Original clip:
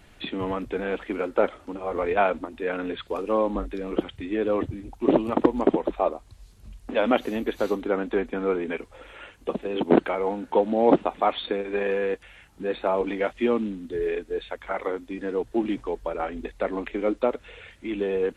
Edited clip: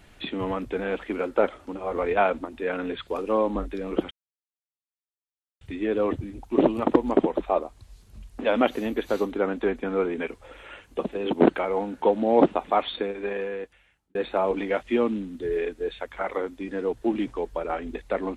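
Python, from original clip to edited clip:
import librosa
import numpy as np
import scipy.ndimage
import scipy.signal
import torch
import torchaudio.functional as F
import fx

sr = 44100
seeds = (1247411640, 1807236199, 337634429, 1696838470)

y = fx.edit(x, sr, fx.insert_silence(at_s=4.11, length_s=1.5),
    fx.fade_out_span(start_s=11.36, length_s=1.29), tone=tone)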